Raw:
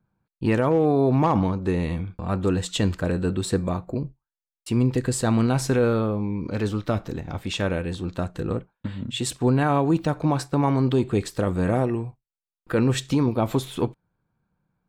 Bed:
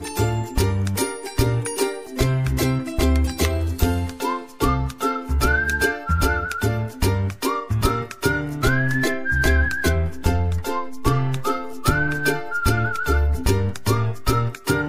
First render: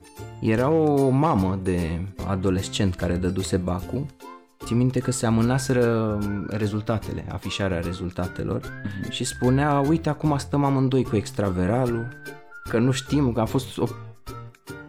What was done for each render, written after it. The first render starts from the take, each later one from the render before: add bed -17.5 dB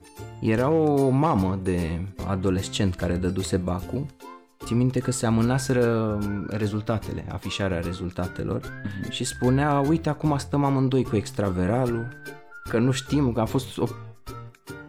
gain -1 dB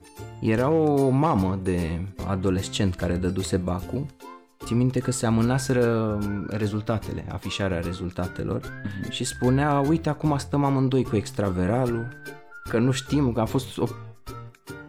nothing audible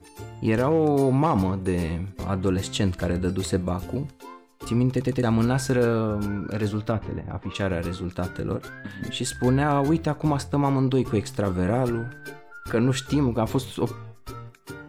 4.9 stutter in place 0.11 s, 3 plays; 6.91–7.54 LPF 2500 Hz -> 1500 Hz; 8.56–9.02 low shelf 180 Hz -11.5 dB

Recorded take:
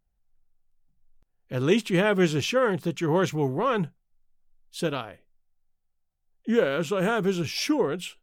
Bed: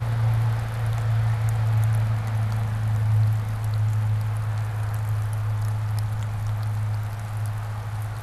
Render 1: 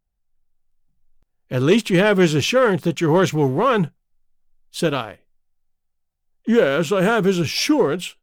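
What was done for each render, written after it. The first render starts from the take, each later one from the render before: sample leveller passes 1; AGC gain up to 4 dB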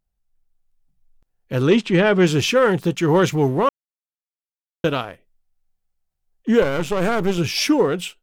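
1.67–2.27 air absorption 100 m; 3.69–4.84 mute; 6.62–7.38 half-wave gain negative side -12 dB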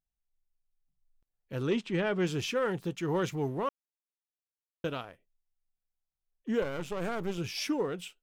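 gain -14 dB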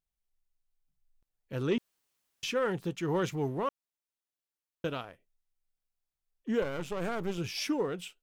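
1.78–2.43 room tone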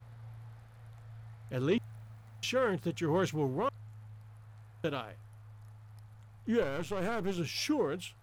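add bed -27 dB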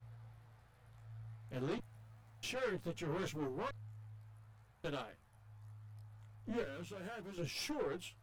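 tube stage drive 32 dB, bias 0.6; chorus voices 2, 0.4 Hz, delay 17 ms, depth 3.5 ms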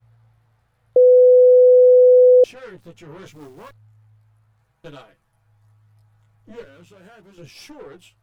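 0.96–2.44 bleep 501 Hz -7 dBFS; 3.31–3.73 short-mantissa float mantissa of 2-bit; 4.59–6.63 comb 6.2 ms

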